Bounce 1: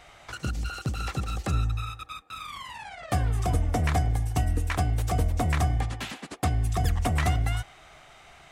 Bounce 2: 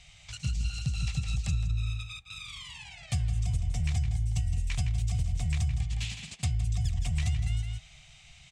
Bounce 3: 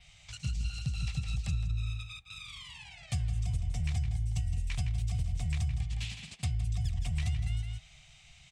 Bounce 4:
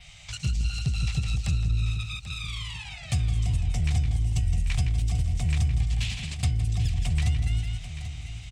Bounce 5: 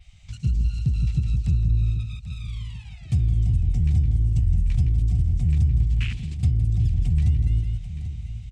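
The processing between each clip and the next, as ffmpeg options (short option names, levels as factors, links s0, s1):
-filter_complex "[0:a]firequalizer=gain_entry='entry(150,0);entry(300,-27);entry(680,-18);entry(1400,-20);entry(2400,-2);entry(5300,0);entry(7700,1);entry(12000,-17)':delay=0.05:min_phase=1,asplit=2[s0][s1];[s1]adelay=163.3,volume=0.447,highshelf=f=4000:g=-3.67[s2];[s0][s2]amix=inputs=2:normalize=0,acompressor=threshold=0.0447:ratio=6,volume=1.26"
-af "adynamicequalizer=threshold=0.00112:dfrequency=6900:dqfactor=2.6:tfrequency=6900:tqfactor=2.6:attack=5:release=100:ratio=0.375:range=2.5:mode=cutabove:tftype=bell,volume=0.708"
-filter_complex "[0:a]asplit=2[s0][s1];[s1]asoftclip=type=tanh:threshold=0.0168,volume=0.562[s2];[s0][s2]amix=inputs=2:normalize=0,aecho=1:1:788|1576|2364|3152:0.251|0.105|0.0443|0.0186,volume=1.78"
-af "afwtdn=0.02,volume=1.68"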